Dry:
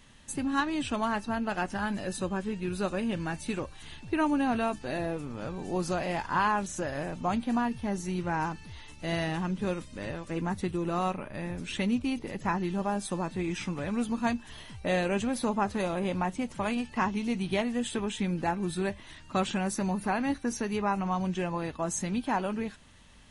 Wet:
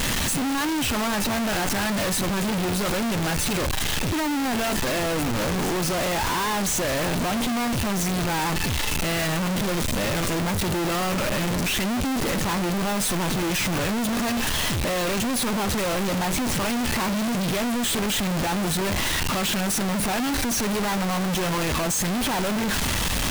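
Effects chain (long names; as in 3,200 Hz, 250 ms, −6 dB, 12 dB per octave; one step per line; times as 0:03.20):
sign of each sample alone
level +7 dB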